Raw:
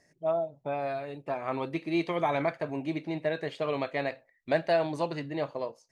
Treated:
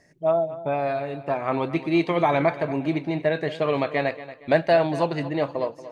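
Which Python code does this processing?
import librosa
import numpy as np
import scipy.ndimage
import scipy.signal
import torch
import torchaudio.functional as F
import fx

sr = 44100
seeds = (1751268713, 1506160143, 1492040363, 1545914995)

p1 = fx.bass_treble(x, sr, bass_db=2, treble_db=-4)
p2 = p1 + fx.echo_feedback(p1, sr, ms=232, feedback_pct=36, wet_db=-15, dry=0)
y = F.gain(torch.from_numpy(p2), 7.0).numpy()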